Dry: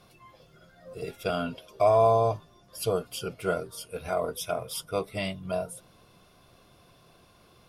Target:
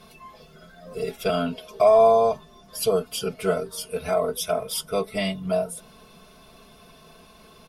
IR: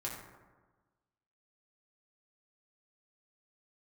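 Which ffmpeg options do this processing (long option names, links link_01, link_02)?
-filter_complex "[0:a]aecho=1:1:4.6:0.86,asplit=2[link_01][link_02];[link_02]acompressor=threshold=-33dB:ratio=6,volume=-1dB[link_03];[link_01][link_03]amix=inputs=2:normalize=0"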